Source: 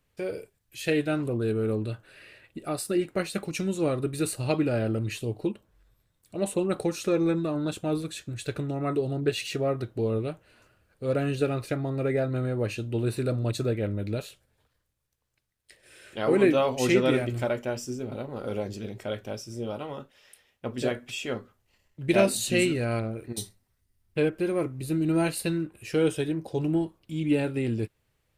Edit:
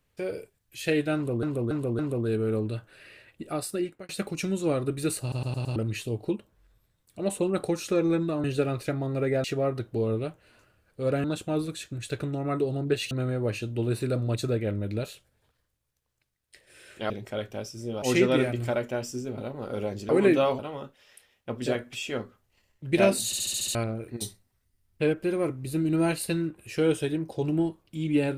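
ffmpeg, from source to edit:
-filter_complex "[0:a]asplit=25[a][b][c][d][e][f][g][h][i][j][k][l][m][n][o][p][q][r][s][t][u][v][w][x][y];[a]atrim=end=1.432[z];[b]atrim=start=1.148:end=1.432[aa];[c]atrim=start=1.148:end=1.432[ab];[d]atrim=start=1.148:end=3.25,asetpts=PTS-STARTPTS,afade=t=out:st=1.482:d=0.62:c=qsin[ac];[e]atrim=start=3.25:end=4.482,asetpts=PTS-STARTPTS,afade=t=in:d=0.004:c=hsin[ad];[f]atrim=start=4.368:end=4.482[ae];[g]atrim=start=4.368:end=4.482[af];[h]atrim=start=4.368:end=4.482[ag];[i]atrim=start=4.368:end=4.482[ah];[j]atrim=start=4.918:end=7.602[ai];[k]atrim=start=11.268:end=12.272[aj];[l]atrim=start=9.468:end=11.272[ak];[m]atrim=start=7.598:end=9.472[al];[n]atrim=start=12.268:end=16.262[am];[o]atrim=start=18.828:end=19.752[an];[p]atrim=start=16.758:end=18.832[ao];[q]atrim=start=16.258:end=16.762[ap];[r]atrim=start=19.748:end=22.492[aq];[s]atrim=start=22.418:end=22.492[ar];[t]atrim=start=22.418:end=22.492[as];[u]atrim=start=22.418:end=22.492[at];[v]atrim=start=22.418:end=22.492[au];[w]atrim=start=22.418:end=22.492[av];[x]atrim=start=22.418:end=22.492[aw];[y]atrim=start=22.908[ax];[z][aa]acrossfade=d=0.004:c1=hsin:c2=hsin[ay];[ay][ab]acrossfade=d=0.004:c1=hsin:c2=hsin[az];[ac][ad]concat=n=2:v=0:a=1[ba];[az][ba]acrossfade=d=0.004:c1=hsin:c2=hsin[bb];[bb][ae]acrossfade=d=0.004:c1=hsin:c2=hsin[bc];[bc][af]acrossfade=d=0.004:c1=hsin:c2=hsin[bd];[bd][ag]acrossfade=d=0.004:c1=hsin:c2=hsin[be];[be][ah]acrossfade=d=0.004:c1=hsin:c2=hsin[bf];[bf][ai]acrossfade=d=0.004:c1=hsin:c2=hsin[bg];[bg][aj]acrossfade=d=0.004:c1=hsin:c2=hsin[bh];[bh][ak]acrossfade=d=0.004:c1=hsin:c2=hsin[bi];[bi][al]acrossfade=d=0.004:c1=hsin:c2=hsin[bj];[bj][am]acrossfade=d=0.004:c1=hsin:c2=hsin[bk];[bk][an]acrossfade=d=0.004:c1=hsin:c2=hsin[bl];[bl][ao]acrossfade=d=0.004:c1=hsin:c2=hsin[bm];[bm][ap]acrossfade=d=0.004:c1=hsin:c2=hsin[bn];[bn][aq]acrossfade=d=0.004:c1=hsin:c2=hsin[bo];[bo][ar]acrossfade=d=0.004:c1=hsin:c2=hsin[bp];[bp][as]acrossfade=d=0.004:c1=hsin:c2=hsin[bq];[bq][at]acrossfade=d=0.004:c1=hsin:c2=hsin[br];[br][au]acrossfade=d=0.004:c1=hsin:c2=hsin[bs];[bs][av]acrossfade=d=0.004:c1=hsin:c2=hsin[bt];[bt][aw]acrossfade=d=0.004:c1=hsin:c2=hsin[bu];[bu][ax]acrossfade=d=0.004:c1=hsin:c2=hsin"

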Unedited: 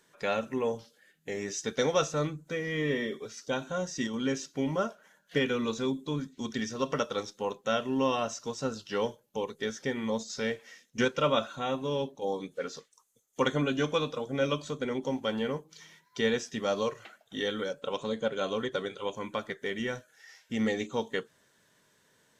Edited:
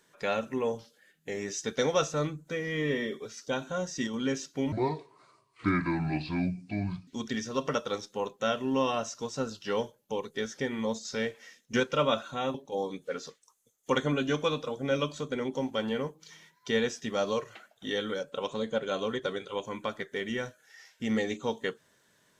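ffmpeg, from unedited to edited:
-filter_complex "[0:a]asplit=4[a][b][c][d];[a]atrim=end=4.724[e];[b]atrim=start=4.72:end=6.32,asetpts=PTS-STARTPTS,asetrate=29988,aresample=44100[f];[c]atrim=start=6.316:end=11.792[g];[d]atrim=start=12.038[h];[e][f]acrossfade=d=0.004:c1=hsin:c2=hsin[i];[i][g]acrossfade=d=0.004:c1=hsin:c2=hsin[j];[j][h]acrossfade=d=0.004:c1=hsin:c2=hsin"

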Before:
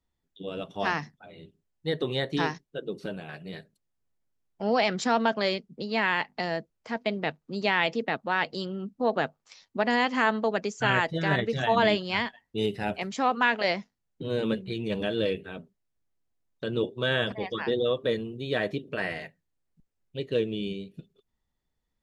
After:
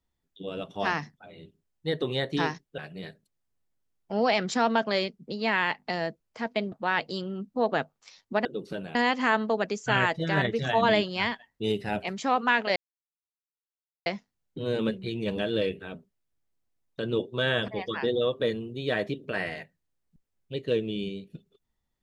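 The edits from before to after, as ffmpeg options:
-filter_complex "[0:a]asplit=6[a][b][c][d][e][f];[a]atrim=end=2.782[g];[b]atrim=start=3.278:end=7.222[h];[c]atrim=start=8.158:end=9.892[i];[d]atrim=start=2.778:end=3.282[j];[e]atrim=start=9.888:end=13.7,asetpts=PTS-STARTPTS,afade=t=out:st=3.808:d=0.004:c=hsin,apad=pad_dur=1.3[k];[f]atrim=start=13.7,asetpts=PTS-STARTPTS,afade=t=in:d=0.004:c=hsin[l];[g][h]acrossfade=d=0.004:c1=hsin:c2=hsin[m];[m][i]acrossfade=d=0.004:c1=hsin:c2=hsin[n];[n][j]acrossfade=d=0.004:c1=hsin:c2=hsin[o];[k][l]concat=n=2:v=0:a=1[p];[o][p]acrossfade=d=0.004:c1=hsin:c2=hsin"

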